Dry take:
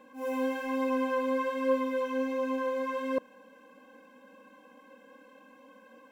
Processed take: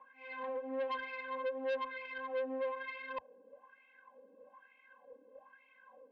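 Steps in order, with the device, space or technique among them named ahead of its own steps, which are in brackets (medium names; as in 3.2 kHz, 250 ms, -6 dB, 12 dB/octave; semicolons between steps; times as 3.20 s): wah-wah guitar rig (wah-wah 1.1 Hz 380–2300 Hz, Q 6.2; valve stage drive 41 dB, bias 0.55; cabinet simulation 83–4000 Hz, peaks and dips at 96 Hz -10 dB, 330 Hz -7 dB, 1.3 kHz -7 dB); trim +9.5 dB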